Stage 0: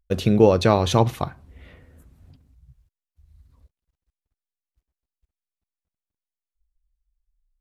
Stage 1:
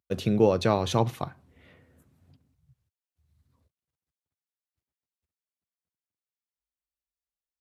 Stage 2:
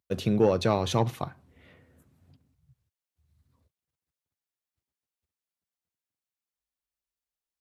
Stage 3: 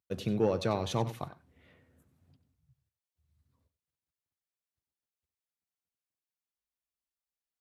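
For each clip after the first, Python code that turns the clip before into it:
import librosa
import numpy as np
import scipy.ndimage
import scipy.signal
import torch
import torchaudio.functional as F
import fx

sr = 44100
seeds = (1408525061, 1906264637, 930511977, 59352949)

y1 = scipy.signal.sosfilt(scipy.signal.butter(4, 93.0, 'highpass', fs=sr, output='sos'), x)
y1 = F.gain(torch.from_numpy(y1), -6.0).numpy()
y2 = 10.0 ** (-11.0 / 20.0) * np.tanh(y1 / 10.0 ** (-11.0 / 20.0))
y3 = y2 + 10.0 ** (-14.5 / 20.0) * np.pad(y2, (int(93 * sr / 1000.0), 0))[:len(y2)]
y3 = F.gain(torch.from_numpy(y3), -6.0).numpy()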